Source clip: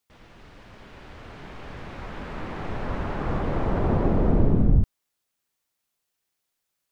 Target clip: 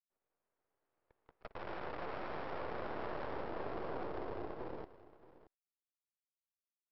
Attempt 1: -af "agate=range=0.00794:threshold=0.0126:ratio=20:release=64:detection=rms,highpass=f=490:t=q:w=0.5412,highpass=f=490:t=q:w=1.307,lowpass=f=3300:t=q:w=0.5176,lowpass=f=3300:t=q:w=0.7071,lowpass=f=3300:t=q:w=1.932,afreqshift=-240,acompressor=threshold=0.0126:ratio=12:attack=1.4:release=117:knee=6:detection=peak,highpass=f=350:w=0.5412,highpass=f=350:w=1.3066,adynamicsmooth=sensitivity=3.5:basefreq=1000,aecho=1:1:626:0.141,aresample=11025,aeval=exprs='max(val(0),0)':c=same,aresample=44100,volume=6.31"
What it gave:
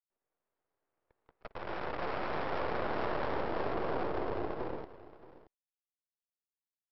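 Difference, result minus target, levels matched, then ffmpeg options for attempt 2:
compression: peak gain reduction -7 dB
-af "agate=range=0.00794:threshold=0.0126:ratio=20:release=64:detection=rms,highpass=f=490:t=q:w=0.5412,highpass=f=490:t=q:w=1.307,lowpass=f=3300:t=q:w=0.5176,lowpass=f=3300:t=q:w=0.7071,lowpass=f=3300:t=q:w=1.932,afreqshift=-240,acompressor=threshold=0.00531:ratio=12:attack=1.4:release=117:knee=6:detection=peak,highpass=f=350:w=0.5412,highpass=f=350:w=1.3066,adynamicsmooth=sensitivity=3.5:basefreq=1000,aecho=1:1:626:0.141,aresample=11025,aeval=exprs='max(val(0),0)':c=same,aresample=44100,volume=6.31"

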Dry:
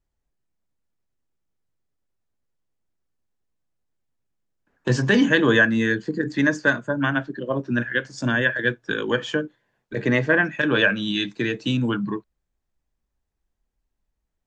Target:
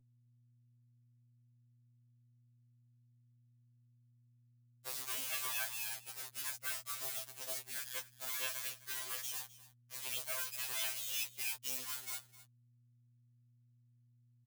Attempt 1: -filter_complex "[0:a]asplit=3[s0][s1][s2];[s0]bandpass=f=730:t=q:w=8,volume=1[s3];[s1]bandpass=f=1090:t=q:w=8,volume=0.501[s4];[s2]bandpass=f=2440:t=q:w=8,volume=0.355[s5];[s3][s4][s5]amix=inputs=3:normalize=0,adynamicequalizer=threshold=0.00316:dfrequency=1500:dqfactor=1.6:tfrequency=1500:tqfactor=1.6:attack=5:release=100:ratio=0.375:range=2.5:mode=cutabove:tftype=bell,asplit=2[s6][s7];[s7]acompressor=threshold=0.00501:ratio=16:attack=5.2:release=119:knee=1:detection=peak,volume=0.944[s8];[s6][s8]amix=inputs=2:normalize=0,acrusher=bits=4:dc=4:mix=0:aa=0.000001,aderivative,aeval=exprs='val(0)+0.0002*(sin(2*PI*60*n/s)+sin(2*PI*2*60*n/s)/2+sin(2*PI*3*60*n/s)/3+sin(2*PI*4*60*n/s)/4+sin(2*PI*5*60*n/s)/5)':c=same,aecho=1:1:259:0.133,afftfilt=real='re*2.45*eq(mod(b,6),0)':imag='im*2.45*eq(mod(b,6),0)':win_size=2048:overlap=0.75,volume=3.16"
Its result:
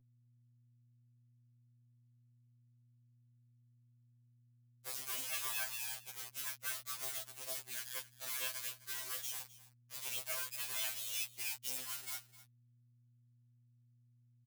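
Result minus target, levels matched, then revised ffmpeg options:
compression: peak gain reduction +6.5 dB
-filter_complex "[0:a]asplit=3[s0][s1][s2];[s0]bandpass=f=730:t=q:w=8,volume=1[s3];[s1]bandpass=f=1090:t=q:w=8,volume=0.501[s4];[s2]bandpass=f=2440:t=q:w=8,volume=0.355[s5];[s3][s4][s5]amix=inputs=3:normalize=0,adynamicequalizer=threshold=0.00316:dfrequency=1500:dqfactor=1.6:tfrequency=1500:tqfactor=1.6:attack=5:release=100:ratio=0.375:range=2.5:mode=cutabove:tftype=bell,asplit=2[s6][s7];[s7]acompressor=threshold=0.0112:ratio=16:attack=5.2:release=119:knee=1:detection=peak,volume=0.944[s8];[s6][s8]amix=inputs=2:normalize=0,acrusher=bits=4:dc=4:mix=0:aa=0.000001,aderivative,aeval=exprs='val(0)+0.0002*(sin(2*PI*60*n/s)+sin(2*PI*2*60*n/s)/2+sin(2*PI*3*60*n/s)/3+sin(2*PI*4*60*n/s)/4+sin(2*PI*5*60*n/s)/5)':c=same,aecho=1:1:259:0.133,afftfilt=real='re*2.45*eq(mod(b,6),0)':imag='im*2.45*eq(mod(b,6),0)':win_size=2048:overlap=0.75,volume=3.16"

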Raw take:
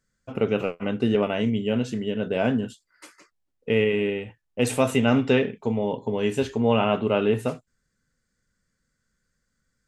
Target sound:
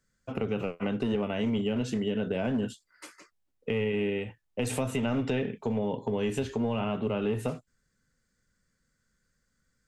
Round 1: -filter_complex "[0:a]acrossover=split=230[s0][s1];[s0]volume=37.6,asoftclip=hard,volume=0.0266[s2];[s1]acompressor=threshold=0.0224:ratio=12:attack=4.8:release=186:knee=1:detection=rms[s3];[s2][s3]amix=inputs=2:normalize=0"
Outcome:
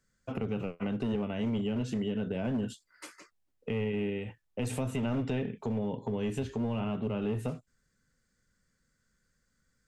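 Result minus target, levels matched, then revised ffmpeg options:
compression: peak gain reduction +6 dB
-filter_complex "[0:a]acrossover=split=230[s0][s1];[s0]volume=37.6,asoftclip=hard,volume=0.0266[s2];[s1]acompressor=threshold=0.0473:ratio=12:attack=4.8:release=186:knee=1:detection=rms[s3];[s2][s3]amix=inputs=2:normalize=0"

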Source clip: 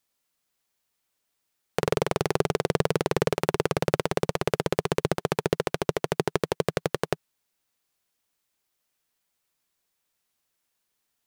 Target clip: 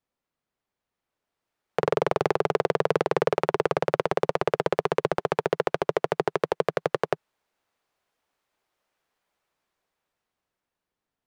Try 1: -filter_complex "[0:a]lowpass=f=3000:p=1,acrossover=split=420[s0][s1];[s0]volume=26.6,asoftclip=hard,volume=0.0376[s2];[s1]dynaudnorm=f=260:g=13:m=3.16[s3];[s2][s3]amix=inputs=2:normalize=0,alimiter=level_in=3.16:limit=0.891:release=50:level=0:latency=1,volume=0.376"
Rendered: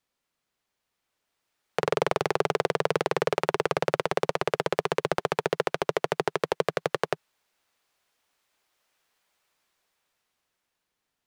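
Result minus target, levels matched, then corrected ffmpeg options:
4 kHz band +5.5 dB
-filter_complex "[0:a]lowpass=f=920:p=1,acrossover=split=420[s0][s1];[s0]volume=26.6,asoftclip=hard,volume=0.0376[s2];[s1]dynaudnorm=f=260:g=13:m=3.16[s3];[s2][s3]amix=inputs=2:normalize=0,alimiter=level_in=3.16:limit=0.891:release=50:level=0:latency=1,volume=0.376"

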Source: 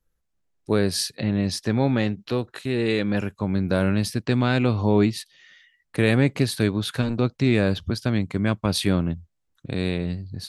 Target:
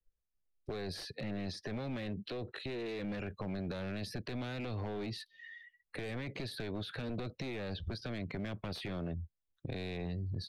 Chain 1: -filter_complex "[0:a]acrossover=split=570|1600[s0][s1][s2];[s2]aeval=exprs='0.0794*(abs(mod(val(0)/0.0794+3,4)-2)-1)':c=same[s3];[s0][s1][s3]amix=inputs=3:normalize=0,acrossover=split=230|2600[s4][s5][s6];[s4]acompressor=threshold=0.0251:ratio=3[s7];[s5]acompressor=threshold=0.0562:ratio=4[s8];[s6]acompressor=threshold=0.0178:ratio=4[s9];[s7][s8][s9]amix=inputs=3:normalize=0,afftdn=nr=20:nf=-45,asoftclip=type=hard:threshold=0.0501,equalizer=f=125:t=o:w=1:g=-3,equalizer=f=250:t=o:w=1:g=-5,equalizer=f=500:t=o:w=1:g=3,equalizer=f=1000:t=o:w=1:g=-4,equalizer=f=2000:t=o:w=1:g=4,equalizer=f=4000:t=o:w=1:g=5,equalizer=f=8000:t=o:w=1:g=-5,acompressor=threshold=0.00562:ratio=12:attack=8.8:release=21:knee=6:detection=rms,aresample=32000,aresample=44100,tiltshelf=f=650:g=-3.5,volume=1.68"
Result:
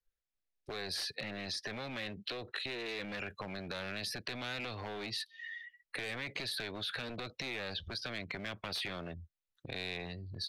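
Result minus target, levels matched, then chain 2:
500 Hz band -3.5 dB
-filter_complex "[0:a]acrossover=split=570|1600[s0][s1][s2];[s2]aeval=exprs='0.0794*(abs(mod(val(0)/0.0794+3,4)-2)-1)':c=same[s3];[s0][s1][s3]amix=inputs=3:normalize=0,acrossover=split=230|2600[s4][s5][s6];[s4]acompressor=threshold=0.0251:ratio=3[s7];[s5]acompressor=threshold=0.0562:ratio=4[s8];[s6]acompressor=threshold=0.0178:ratio=4[s9];[s7][s8][s9]amix=inputs=3:normalize=0,afftdn=nr=20:nf=-45,asoftclip=type=hard:threshold=0.0501,equalizer=f=125:t=o:w=1:g=-3,equalizer=f=250:t=o:w=1:g=-5,equalizer=f=500:t=o:w=1:g=3,equalizer=f=1000:t=o:w=1:g=-4,equalizer=f=2000:t=o:w=1:g=4,equalizer=f=4000:t=o:w=1:g=5,equalizer=f=8000:t=o:w=1:g=-5,acompressor=threshold=0.00562:ratio=12:attack=8.8:release=21:knee=6:detection=rms,aresample=32000,aresample=44100,tiltshelf=f=650:g=4.5,volume=1.68"

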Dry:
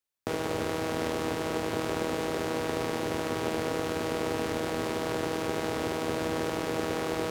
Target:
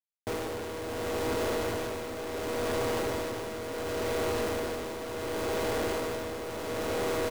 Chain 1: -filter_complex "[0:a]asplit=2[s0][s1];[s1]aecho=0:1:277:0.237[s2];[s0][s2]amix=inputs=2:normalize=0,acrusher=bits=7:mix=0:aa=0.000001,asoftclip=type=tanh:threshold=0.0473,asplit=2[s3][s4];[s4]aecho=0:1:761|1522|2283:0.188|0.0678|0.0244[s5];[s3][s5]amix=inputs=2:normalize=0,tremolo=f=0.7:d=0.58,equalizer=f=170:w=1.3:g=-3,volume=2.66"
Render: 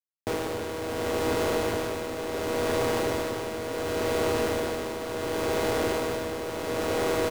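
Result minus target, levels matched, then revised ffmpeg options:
saturation: distortion -5 dB
-filter_complex "[0:a]asplit=2[s0][s1];[s1]aecho=0:1:277:0.237[s2];[s0][s2]amix=inputs=2:normalize=0,acrusher=bits=7:mix=0:aa=0.000001,asoftclip=type=tanh:threshold=0.02,asplit=2[s3][s4];[s4]aecho=0:1:761|1522|2283:0.188|0.0678|0.0244[s5];[s3][s5]amix=inputs=2:normalize=0,tremolo=f=0.7:d=0.58,equalizer=f=170:w=1.3:g=-3,volume=2.66"

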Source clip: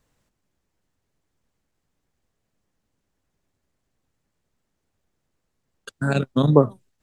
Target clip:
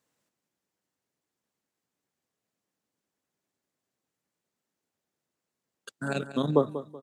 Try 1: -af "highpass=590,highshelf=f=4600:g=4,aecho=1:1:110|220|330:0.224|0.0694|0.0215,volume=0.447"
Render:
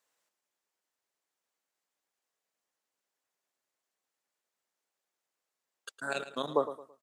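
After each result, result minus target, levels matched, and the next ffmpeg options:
echo 79 ms early; 250 Hz band -7.0 dB
-af "highpass=590,highshelf=f=4600:g=4,aecho=1:1:189|378|567:0.224|0.0694|0.0215,volume=0.447"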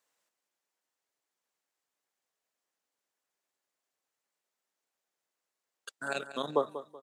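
250 Hz band -7.0 dB
-af "highpass=190,highshelf=f=4600:g=4,aecho=1:1:189|378|567:0.224|0.0694|0.0215,volume=0.447"

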